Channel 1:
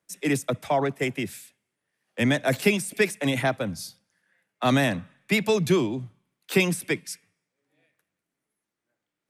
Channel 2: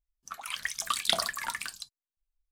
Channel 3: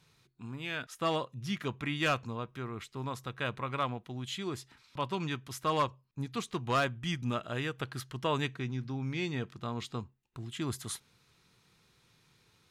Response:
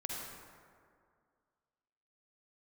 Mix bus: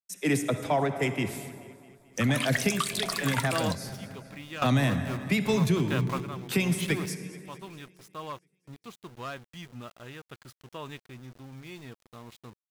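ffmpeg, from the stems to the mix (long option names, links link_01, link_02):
-filter_complex "[0:a]agate=range=-33dB:threshold=-52dB:ratio=3:detection=peak,asubboost=boost=3:cutoff=210,volume=-9dB,asplit=4[link_01][link_02][link_03][link_04];[link_02]volume=-7dB[link_05];[link_03]volume=-16.5dB[link_06];[1:a]adelay=1900,volume=1.5dB[link_07];[2:a]aeval=exprs='val(0)*gte(abs(val(0)),0.0106)':channel_layout=same,adelay=2500,volume=-2dB[link_08];[link_04]apad=whole_len=670704[link_09];[link_08][link_09]sidechaingate=range=-13dB:threshold=-54dB:ratio=16:detection=peak[link_10];[3:a]atrim=start_sample=2205[link_11];[link_05][link_11]afir=irnorm=-1:irlink=0[link_12];[link_06]aecho=0:1:218|436|654|872|1090|1308|1526|1744|1962:1|0.57|0.325|0.185|0.106|0.0602|0.0343|0.0195|0.0111[link_13];[link_01][link_07][link_10][link_12][link_13]amix=inputs=5:normalize=0,acontrast=39,alimiter=limit=-15dB:level=0:latency=1:release=418"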